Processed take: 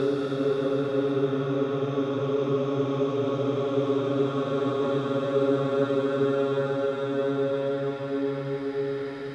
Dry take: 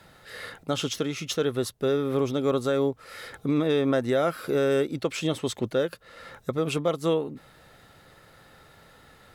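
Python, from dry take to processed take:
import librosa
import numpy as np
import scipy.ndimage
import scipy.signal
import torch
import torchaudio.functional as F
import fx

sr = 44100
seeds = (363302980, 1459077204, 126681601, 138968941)

y = fx.paulstretch(x, sr, seeds[0], factor=7.3, window_s=1.0, from_s=1.86)
y = scipy.signal.sosfilt(scipy.signal.bessel(2, 3500.0, 'lowpass', norm='mag', fs=sr, output='sos'), y)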